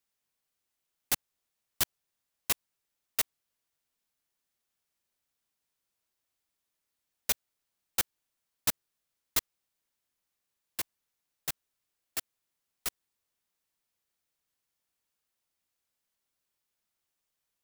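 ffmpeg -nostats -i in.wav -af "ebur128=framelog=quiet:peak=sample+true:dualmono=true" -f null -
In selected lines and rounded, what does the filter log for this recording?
Integrated loudness:
  I:         -30.9 LUFS
  Threshold: -41.0 LUFS
Loudness range:
  LRA:         9.3 LU
  Threshold: -54.9 LUFS
  LRA low:   -41.0 LUFS
  LRA high:  -31.7 LUFS
Sample peak:
  Peak:      -10.7 dBFS
True peak:
  Peak:      -10.9 dBFS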